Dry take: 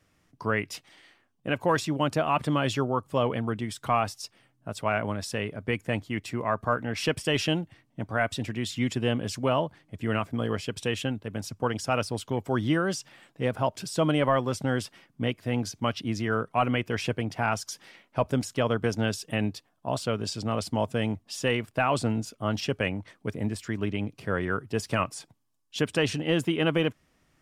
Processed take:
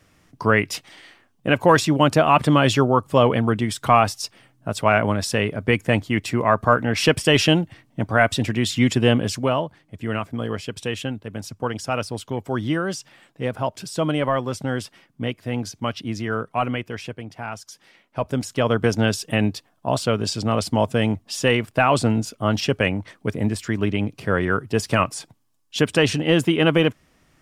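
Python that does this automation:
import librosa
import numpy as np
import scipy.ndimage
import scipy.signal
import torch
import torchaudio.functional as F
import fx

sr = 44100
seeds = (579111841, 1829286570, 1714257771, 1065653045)

y = fx.gain(x, sr, db=fx.line((9.17, 9.5), (9.64, 2.0), (16.64, 2.0), (17.15, -5.0), (17.66, -5.0), (18.82, 7.5)))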